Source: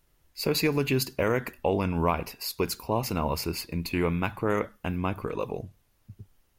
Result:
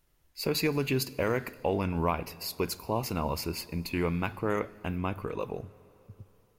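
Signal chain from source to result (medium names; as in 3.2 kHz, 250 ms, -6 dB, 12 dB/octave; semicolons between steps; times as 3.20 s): plate-style reverb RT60 3.6 s, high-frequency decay 0.85×, DRR 19.5 dB; trim -3 dB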